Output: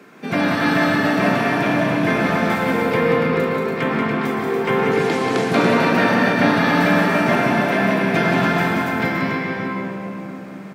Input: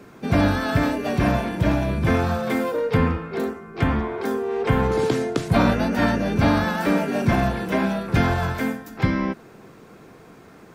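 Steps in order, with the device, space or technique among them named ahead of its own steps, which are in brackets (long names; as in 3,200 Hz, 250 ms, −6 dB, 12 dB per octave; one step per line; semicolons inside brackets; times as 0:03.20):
stadium PA (high-pass filter 160 Hz 24 dB per octave; parametric band 2,100 Hz +6 dB 1.5 octaves; loudspeakers that aren't time-aligned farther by 63 metres −5 dB, 98 metres −6 dB; convolution reverb RT60 3.6 s, pre-delay 107 ms, DRR 0 dB)
level −1 dB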